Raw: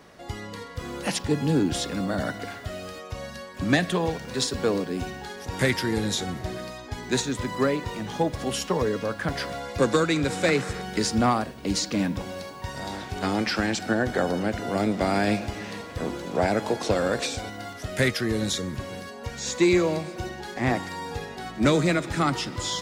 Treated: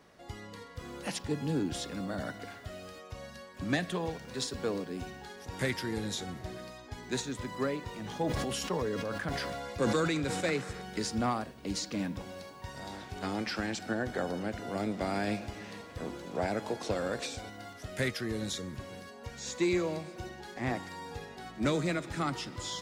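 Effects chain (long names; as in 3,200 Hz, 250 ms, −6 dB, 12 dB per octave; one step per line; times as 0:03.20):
0:07.93–0:10.41: level that may fall only so fast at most 21 dB per second
level −9 dB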